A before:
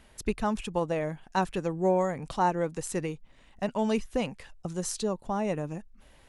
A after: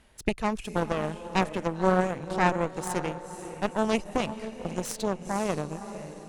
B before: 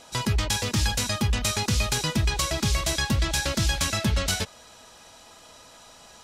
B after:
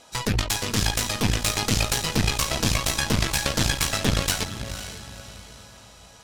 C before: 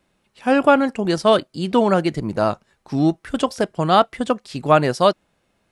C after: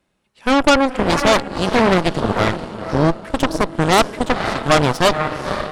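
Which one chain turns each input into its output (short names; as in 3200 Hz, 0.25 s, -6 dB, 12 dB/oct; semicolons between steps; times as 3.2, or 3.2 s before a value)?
diffused feedback echo 0.51 s, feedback 44%, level -7.5 dB; added harmonics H 8 -9 dB, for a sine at -1 dBFS; gain -2.5 dB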